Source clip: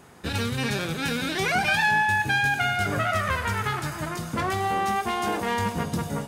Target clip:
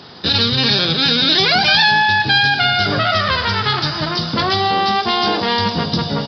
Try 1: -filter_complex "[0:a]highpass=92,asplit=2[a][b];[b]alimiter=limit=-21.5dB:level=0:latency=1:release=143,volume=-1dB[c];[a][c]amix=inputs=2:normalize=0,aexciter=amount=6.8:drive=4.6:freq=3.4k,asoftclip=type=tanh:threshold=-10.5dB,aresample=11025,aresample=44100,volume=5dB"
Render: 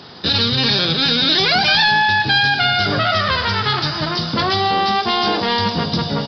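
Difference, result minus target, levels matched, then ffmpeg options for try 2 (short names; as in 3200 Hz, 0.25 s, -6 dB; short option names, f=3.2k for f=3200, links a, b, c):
soft clip: distortion +12 dB
-filter_complex "[0:a]highpass=92,asplit=2[a][b];[b]alimiter=limit=-21.5dB:level=0:latency=1:release=143,volume=-1dB[c];[a][c]amix=inputs=2:normalize=0,aexciter=amount=6.8:drive=4.6:freq=3.4k,asoftclip=type=tanh:threshold=-2.5dB,aresample=11025,aresample=44100,volume=5dB"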